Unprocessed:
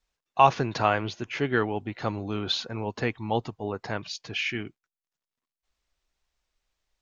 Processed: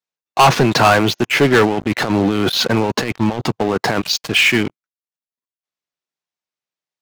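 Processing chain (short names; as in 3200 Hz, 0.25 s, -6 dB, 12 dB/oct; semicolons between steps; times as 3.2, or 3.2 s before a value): HPF 120 Hz 24 dB/oct; 1.66–4.01 negative-ratio compressor -35 dBFS, ratio -1; sample leveller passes 5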